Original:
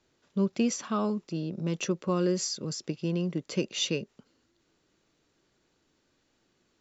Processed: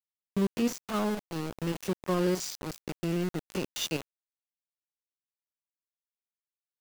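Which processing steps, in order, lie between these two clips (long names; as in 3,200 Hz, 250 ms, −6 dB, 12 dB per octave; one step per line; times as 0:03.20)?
spectrum averaged block by block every 50 ms
centre clipping without the shift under −31.5 dBFS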